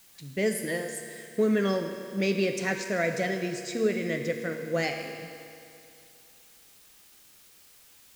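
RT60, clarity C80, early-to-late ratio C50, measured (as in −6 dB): 2.6 s, 6.5 dB, 5.5 dB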